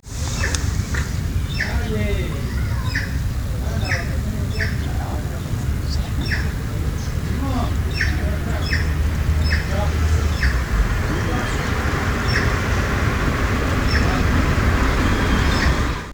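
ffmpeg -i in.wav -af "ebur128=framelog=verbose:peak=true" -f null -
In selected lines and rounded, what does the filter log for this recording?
Integrated loudness:
  I:         -21.3 LUFS
  Threshold: -31.3 LUFS
Loudness range:
  LRA:         4.3 LU
  Threshold: -41.5 LUFS
  LRA low:   -23.5 LUFS
  LRA high:  -19.2 LUFS
True peak:
  Peak:       -1.9 dBFS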